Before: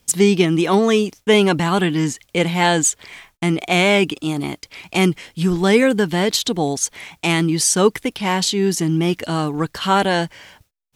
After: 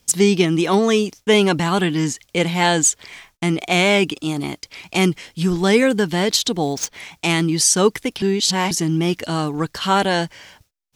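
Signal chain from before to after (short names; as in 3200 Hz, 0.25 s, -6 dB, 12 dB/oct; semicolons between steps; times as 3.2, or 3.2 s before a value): 6.57–7 median filter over 5 samples; bell 5500 Hz +4 dB 0.99 oct; 8.22–8.71 reverse; gain -1 dB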